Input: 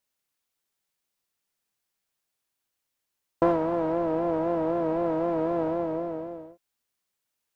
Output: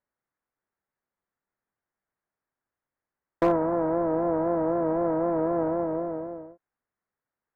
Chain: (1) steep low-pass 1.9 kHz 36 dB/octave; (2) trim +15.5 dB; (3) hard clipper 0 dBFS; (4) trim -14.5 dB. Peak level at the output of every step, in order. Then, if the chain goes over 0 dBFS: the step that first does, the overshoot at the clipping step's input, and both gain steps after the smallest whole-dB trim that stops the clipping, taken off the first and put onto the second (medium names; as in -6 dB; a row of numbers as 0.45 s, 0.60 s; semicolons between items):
-8.5 dBFS, +7.0 dBFS, 0.0 dBFS, -14.5 dBFS; step 2, 7.0 dB; step 2 +8.5 dB, step 4 -7.5 dB